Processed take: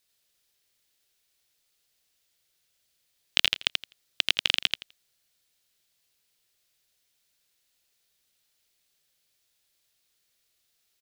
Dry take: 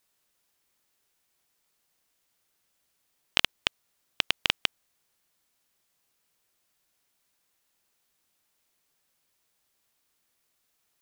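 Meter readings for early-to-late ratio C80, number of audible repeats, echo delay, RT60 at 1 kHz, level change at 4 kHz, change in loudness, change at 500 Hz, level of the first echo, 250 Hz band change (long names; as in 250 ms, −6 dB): no reverb audible, 2, 84 ms, no reverb audible, +3.5 dB, +2.5 dB, −2.5 dB, −3.5 dB, −4.0 dB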